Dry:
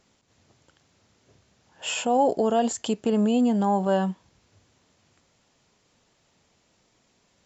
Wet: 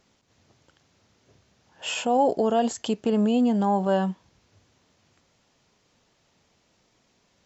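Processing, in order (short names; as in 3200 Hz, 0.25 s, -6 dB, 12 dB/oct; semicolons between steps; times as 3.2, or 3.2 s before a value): notch 7200 Hz, Q 12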